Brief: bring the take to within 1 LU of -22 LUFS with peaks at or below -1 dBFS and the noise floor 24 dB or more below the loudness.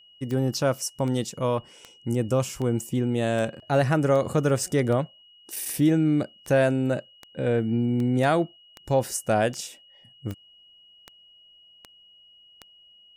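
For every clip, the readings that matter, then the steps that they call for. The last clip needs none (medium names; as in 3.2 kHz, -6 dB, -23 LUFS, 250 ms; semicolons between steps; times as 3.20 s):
clicks found 17; steady tone 2.9 kHz; tone level -52 dBFS; loudness -25.0 LUFS; peak level -10.0 dBFS; loudness target -22.0 LUFS
-> de-click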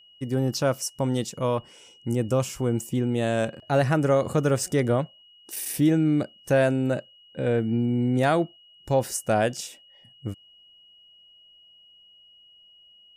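clicks found 0; steady tone 2.9 kHz; tone level -52 dBFS
-> band-stop 2.9 kHz, Q 30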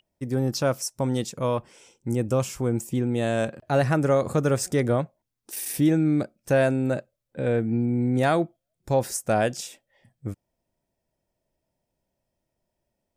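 steady tone not found; loudness -25.0 LUFS; peak level -10.5 dBFS; loudness target -22.0 LUFS
-> trim +3 dB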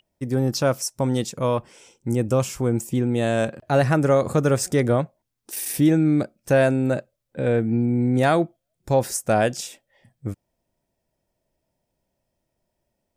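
loudness -22.0 LUFS; peak level -7.5 dBFS; noise floor -79 dBFS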